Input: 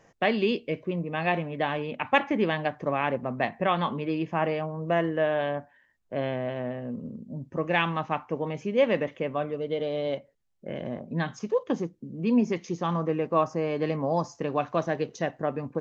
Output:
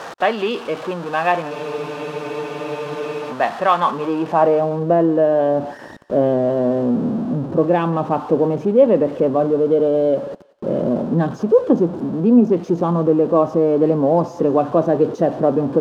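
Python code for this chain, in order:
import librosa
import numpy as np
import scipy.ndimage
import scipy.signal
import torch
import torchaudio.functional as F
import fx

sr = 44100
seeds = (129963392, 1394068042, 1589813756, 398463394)

p1 = x + 0.5 * 10.0 ** (-32.0 / 20.0) * np.sign(x)
p2 = fx.peak_eq(p1, sr, hz=2100.0, db=-10.0, octaves=0.62)
p3 = fx.rider(p2, sr, range_db=4, speed_s=0.5)
p4 = p2 + (p3 * librosa.db_to_amplitude(1.5))
p5 = fx.filter_sweep_bandpass(p4, sr, from_hz=1300.0, to_hz=360.0, start_s=3.77, end_s=4.95, q=0.86)
p6 = p5 + fx.echo_thinned(p5, sr, ms=182, feedback_pct=38, hz=1100.0, wet_db=-18, dry=0)
p7 = fx.spec_freeze(p6, sr, seeds[0], at_s=1.53, hold_s=1.78)
y = p7 * librosa.db_to_amplitude(6.0)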